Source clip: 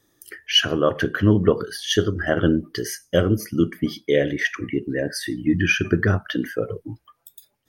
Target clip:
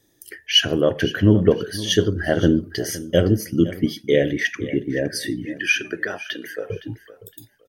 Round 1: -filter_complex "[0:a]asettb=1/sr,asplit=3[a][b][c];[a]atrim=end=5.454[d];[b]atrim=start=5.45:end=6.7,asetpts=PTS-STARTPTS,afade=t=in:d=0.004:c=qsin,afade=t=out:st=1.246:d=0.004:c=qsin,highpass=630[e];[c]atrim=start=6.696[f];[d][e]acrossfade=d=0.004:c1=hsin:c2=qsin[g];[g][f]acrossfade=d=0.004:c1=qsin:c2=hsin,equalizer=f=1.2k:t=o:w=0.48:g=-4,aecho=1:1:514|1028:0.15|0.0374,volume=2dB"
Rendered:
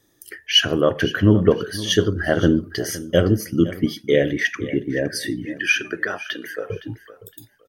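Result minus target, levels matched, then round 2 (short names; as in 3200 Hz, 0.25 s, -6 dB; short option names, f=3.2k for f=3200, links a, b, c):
1000 Hz band +3.5 dB
-filter_complex "[0:a]asettb=1/sr,asplit=3[a][b][c];[a]atrim=end=5.454[d];[b]atrim=start=5.45:end=6.7,asetpts=PTS-STARTPTS,afade=t=in:d=0.004:c=qsin,afade=t=out:st=1.246:d=0.004:c=qsin,highpass=630[e];[c]atrim=start=6.696[f];[d][e]acrossfade=d=0.004:c1=hsin:c2=qsin[g];[g][f]acrossfade=d=0.004:c1=qsin:c2=hsin,equalizer=f=1.2k:t=o:w=0.48:g=-12.5,aecho=1:1:514|1028:0.15|0.0374,volume=2dB"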